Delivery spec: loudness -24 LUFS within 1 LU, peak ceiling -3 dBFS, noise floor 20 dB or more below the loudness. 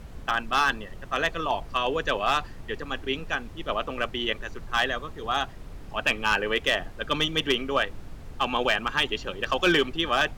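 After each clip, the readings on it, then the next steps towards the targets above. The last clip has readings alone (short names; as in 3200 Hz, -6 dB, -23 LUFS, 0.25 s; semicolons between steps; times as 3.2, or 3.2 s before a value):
clipped 0.3%; flat tops at -14.0 dBFS; noise floor -42 dBFS; noise floor target -47 dBFS; loudness -26.5 LUFS; peak -14.0 dBFS; loudness target -24.0 LUFS
-> clip repair -14 dBFS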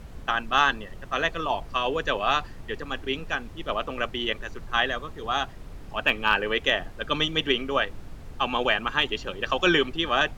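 clipped 0.0%; noise floor -42 dBFS; noise floor target -46 dBFS
-> noise print and reduce 6 dB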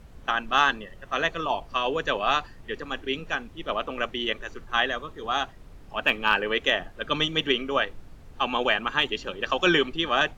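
noise floor -48 dBFS; loudness -26.0 LUFS; peak -5.5 dBFS; loudness target -24.0 LUFS
-> gain +2 dB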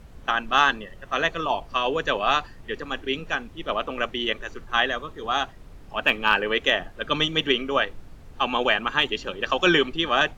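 loudness -24.0 LUFS; peak -3.5 dBFS; noise floor -46 dBFS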